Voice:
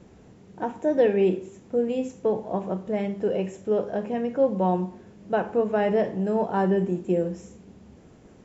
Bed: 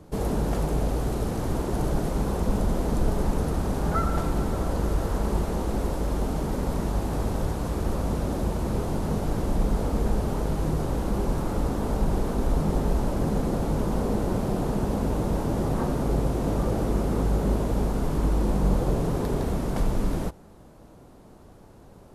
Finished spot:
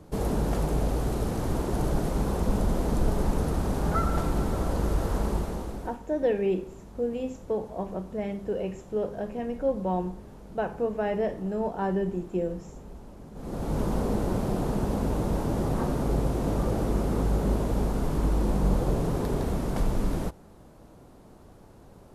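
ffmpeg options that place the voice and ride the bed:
ffmpeg -i stem1.wav -i stem2.wav -filter_complex "[0:a]adelay=5250,volume=-5dB[link_01];[1:a]volume=18dB,afade=type=out:start_time=5.2:duration=0.79:silence=0.105925,afade=type=in:start_time=13.34:duration=0.47:silence=0.112202[link_02];[link_01][link_02]amix=inputs=2:normalize=0" out.wav

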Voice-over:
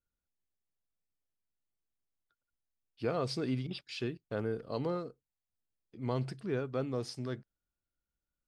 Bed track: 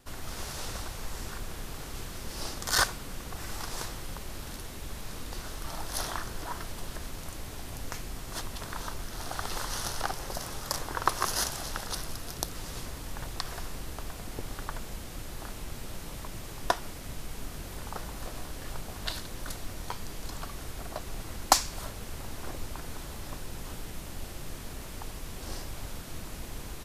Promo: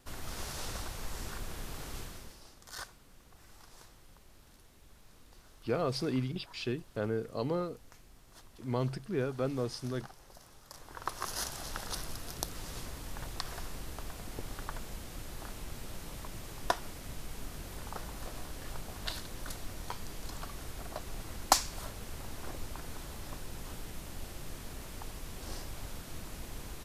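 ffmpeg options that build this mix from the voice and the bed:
ffmpeg -i stem1.wav -i stem2.wav -filter_complex "[0:a]adelay=2650,volume=1.5dB[link_01];[1:a]volume=13dB,afade=type=out:start_time=1.94:duration=0.46:silence=0.149624,afade=type=in:start_time=10.71:duration=1.17:silence=0.16788[link_02];[link_01][link_02]amix=inputs=2:normalize=0" out.wav

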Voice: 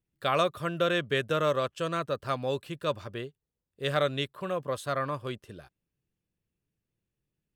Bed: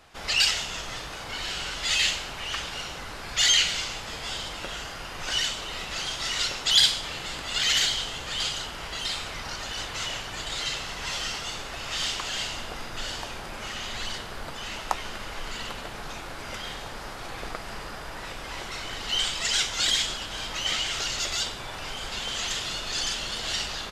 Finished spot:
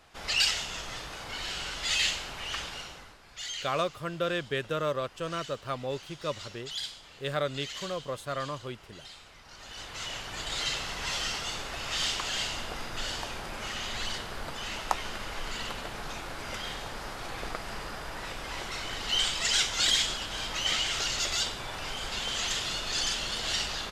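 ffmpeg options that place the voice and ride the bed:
ffmpeg -i stem1.wav -i stem2.wav -filter_complex "[0:a]adelay=3400,volume=-3.5dB[link_01];[1:a]volume=13dB,afade=type=out:start_time=2.62:duration=0.56:silence=0.199526,afade=type=in:start_time=9.46:duration=1.16:silence=0.149624[link_02];[link_01][link_02]amix=inputs=2:normalize=0" out.wav

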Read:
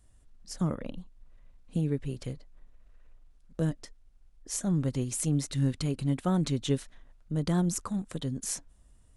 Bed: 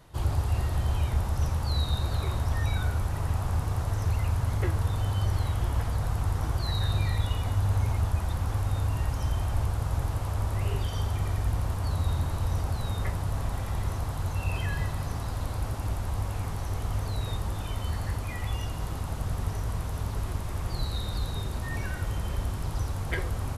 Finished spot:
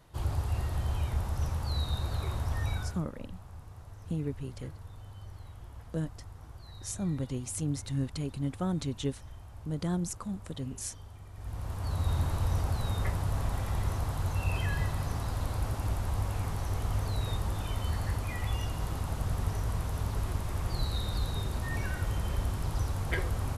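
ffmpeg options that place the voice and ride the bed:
ffmpeg -i stem1.wav -i stem2.wav -filter_complex "[0:a]adelay=2350,volume=-4.5dB[link_01];[1:a]volume=14dB,afade=type=out:start_time=2.72:duration=0.33:silence=0.177828,afade=type=in:start_time=11.33:duration=0.87:silence=0.11885[link_02];[link_01][link_02]amix=inputs=2:normalize=0" out.wav

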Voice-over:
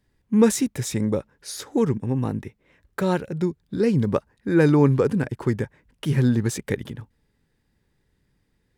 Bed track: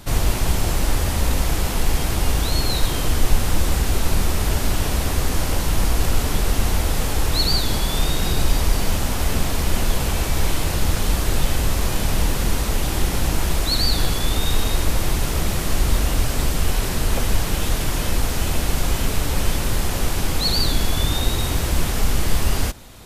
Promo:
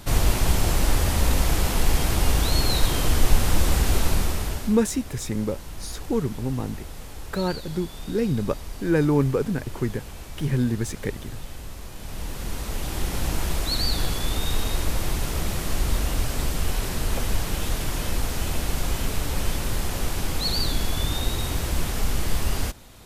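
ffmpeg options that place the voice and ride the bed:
ffmpeg -i stem1.wav -i stem2.wav -filter_complex "[0:a]adelay=4350,volume=-3.5dB[link_01];[1:a]volume=11.5dB,afade=type=out:start_time=3.97:duration=0.82:silence=0.149624,afade=type=in:start_time=11.95:duration=1.35:silence=0.237137[link_02];[link_01][link_02]amix=inputs=2:normalize=0" out.wav

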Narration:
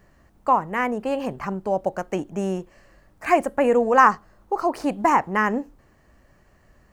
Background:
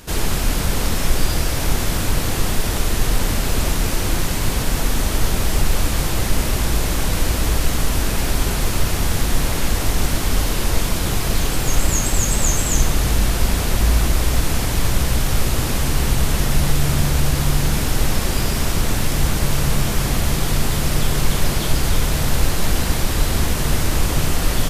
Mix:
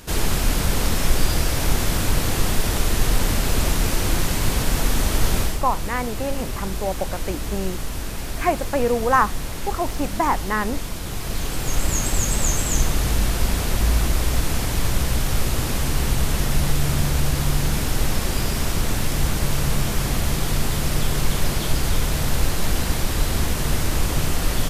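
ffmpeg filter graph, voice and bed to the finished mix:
ffmpeg -i stem1.wav -i stem2.wav -filter_complex "[0:a]adelay=5150,volume=-2.5dB[link_01];[1:a]volume=5.5dB,afade=type=out:start_time=5.39:duration=0.2:silence=0.375837,afade=type=in:start_time=11.05:duration=1:silence=0.473151[link_02];[link_01][link_02]amix=inputs=2:normalize=0" out.wav

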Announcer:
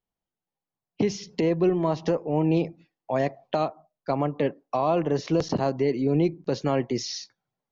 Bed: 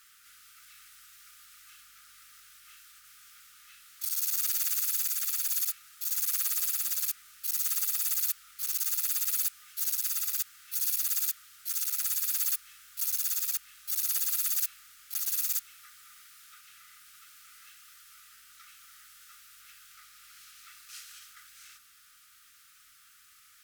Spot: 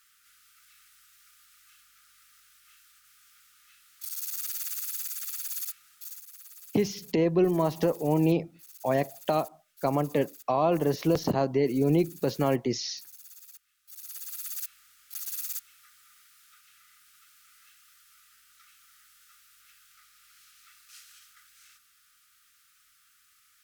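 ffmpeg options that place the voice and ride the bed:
ffmpeg -i stem1.wav -i stem2.wav -filter_complex "[0:a]adelay=5750,volume=-1dB[link_01];[1:a]volume=9.5dB,afade=type=out:start_time=5.92:duration=0.31:silence=0.188365,afade=type=in:start_time=13.83:duration=0.99:silence=0.188365[link_02];[link_01][link_02]amix=inputs=2:normalize=0" out.wav

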